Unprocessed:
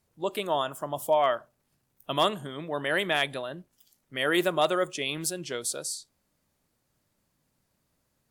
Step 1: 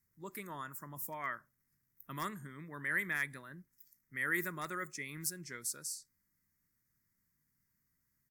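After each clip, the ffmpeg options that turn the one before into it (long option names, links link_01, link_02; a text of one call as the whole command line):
ffmpeg -i in.wav -af "firequalizer=gain_entry='entry(180,0);entry(670,-21);entry(1000,-6);entry(2000,6);entry(2900,-21);entry(5300,1);entry(10000,0);entry(14000,10)':delay=0.05:min_phase=1,volume=-7.5dB" out.wav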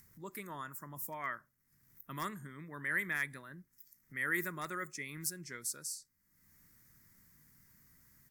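ffmpeg -i in.wav -af "acompressor=mode=upward:threshold=-50dB:ratio=2.5" out.wav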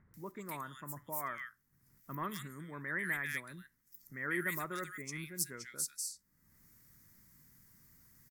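ffmpeg -i in.wav -filter_complex "[0:a]acrossover=split=1800[link_01][link_02];[link_02]adelay=140[link_03];[link_01][link_03]amix=inputs=2:normalize=0,volume=1.5dB" out.wav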